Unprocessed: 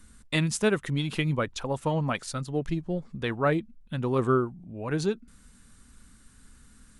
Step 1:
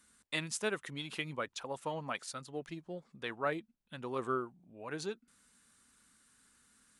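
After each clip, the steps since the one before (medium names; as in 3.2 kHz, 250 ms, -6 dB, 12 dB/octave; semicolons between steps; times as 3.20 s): high-pass 590 Hz 6 dB/octave; trim -6.5 dB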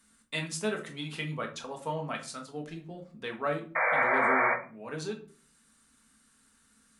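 painted sound noise, 3.75–4.54 s, 470–2400 Hz -28 dBFS; simulated room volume 300 m³, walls furnished, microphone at 1.6 m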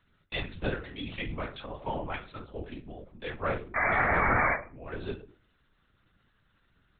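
LPC vocoder at 8 kHz whisper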